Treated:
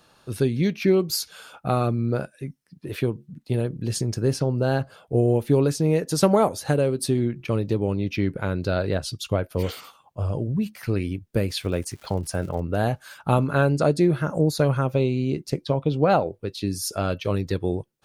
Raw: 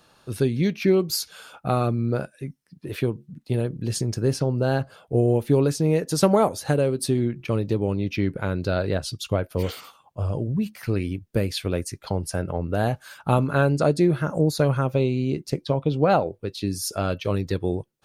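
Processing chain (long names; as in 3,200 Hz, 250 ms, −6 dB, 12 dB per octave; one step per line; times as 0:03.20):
0:11.48–0:12.59: surface crackle 250 per second −39 dBFS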